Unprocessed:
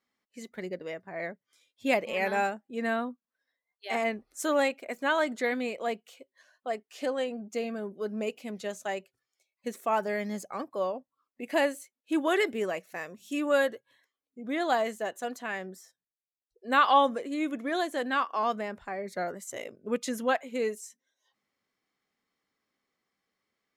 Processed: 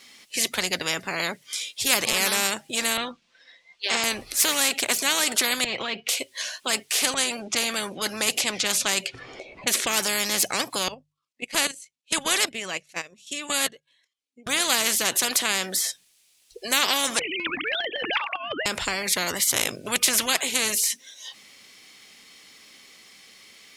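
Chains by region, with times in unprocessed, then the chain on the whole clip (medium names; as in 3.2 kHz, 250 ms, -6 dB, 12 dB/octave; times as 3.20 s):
2.97–4.04 s: distance through air 160 m + comb 5.8 ms, depth 42%
5.64–6.09 s: distance through air 280 m + compression 5:1, threshold -37 dBFS + comb of notches 300 Hz
7.14–10.01 s: level-controlled noise filter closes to 410 Hz, open at -31 dBFS + upward compressor, threshold -42 dBFS
10.88–14.47 s: low-pass 8.5 kHz + level held to a coarse grid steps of 9 dB + upward expansion 2.5:1, over -44 dBFS
17.19–18.66 s: formants replaced by sine waves + compressor with a negative ratio -30 dBFS, ratio -0.5
whole clip: high-order bell 5 kHz +13.5 dB 2.7 oct; hum notches 50/100/150 Hz; spectrum-flattening compressor 4:1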